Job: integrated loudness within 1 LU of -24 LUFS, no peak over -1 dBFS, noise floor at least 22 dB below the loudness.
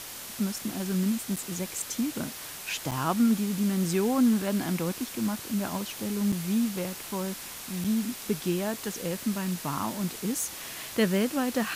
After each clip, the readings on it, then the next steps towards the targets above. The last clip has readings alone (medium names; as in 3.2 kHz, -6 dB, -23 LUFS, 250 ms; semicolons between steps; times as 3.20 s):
dropouts 4; longest dropout 5.9 ms; noise floor -41 dBFS; noise floor target -52 dBFS; loudness -29.5 LUFS; peak level -14.0 dBFS; loudness target -24.0 LUFS
-> interpolate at 1.36/2.91/6.32/7.84 s, 5.9 ms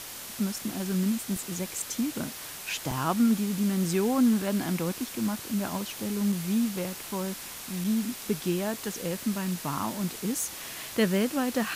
dropouts 0; noise floor -41 dBFS; noise floor target -52 dBFS
-> noise reduction 11 dB, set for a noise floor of -41 dBFS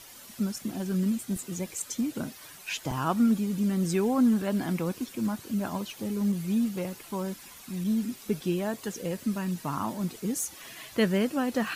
noise floor -48 dBFS; noise floor target -52 dBFS
-> noise reduction 6 dB, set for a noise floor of -48 dBFS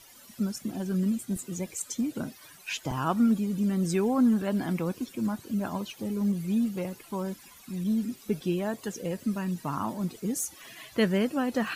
noise floor -53 dBFS; loudness -30.0 LUFS; peak level -14.5 dBFS; loudness target -24.0 LUFS
-> trim +6 dB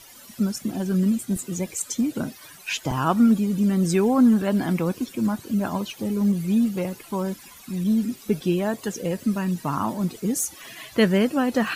loudness -23.5 LUFS; peak level -8.5 dBFS; noise floor -47 dBFS